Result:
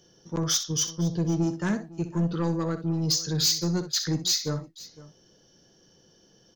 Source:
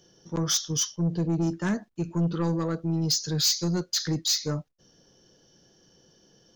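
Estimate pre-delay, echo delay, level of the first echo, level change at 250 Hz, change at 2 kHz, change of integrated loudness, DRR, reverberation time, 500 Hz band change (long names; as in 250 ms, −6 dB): no reverb audible, 63 ms, −12.0 dB, 0.0 dB, +0.5 dB, 0.0 dB, no reverb audible, no reverb audible, 0.0 dB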